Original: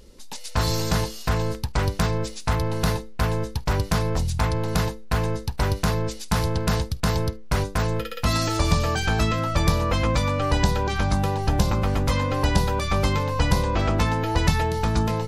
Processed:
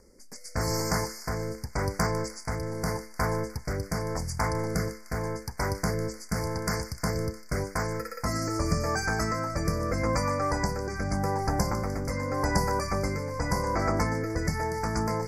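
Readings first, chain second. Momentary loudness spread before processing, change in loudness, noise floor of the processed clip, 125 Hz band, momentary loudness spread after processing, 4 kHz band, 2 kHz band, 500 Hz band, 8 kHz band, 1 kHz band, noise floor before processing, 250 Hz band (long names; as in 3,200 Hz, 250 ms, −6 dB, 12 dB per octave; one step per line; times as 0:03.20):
4 LU, −6.0 dB, −46 dBFS, −8.0 dB, 6 LU, −8.5 dB, −4.0 dB, −3.5 dB, −2.5 dB, −4.0 dB, −36 dBFS, −5.0 dB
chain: Chebyshev band-stop filter 2,200–4,700 Hz, order 4
low-shelf EQ 140 Hz −9 dB
rotating-speaker cabinet horn 0.85 Hz
on a send: delay with a high-pass on its return 151 ms, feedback 61%, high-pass 1,800 Hz, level −12 dB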